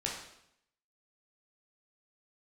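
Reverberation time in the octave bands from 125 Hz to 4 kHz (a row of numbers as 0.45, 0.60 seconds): 0.85, 0.80, 0.75, 0.75, 0.70, 0.70 seconds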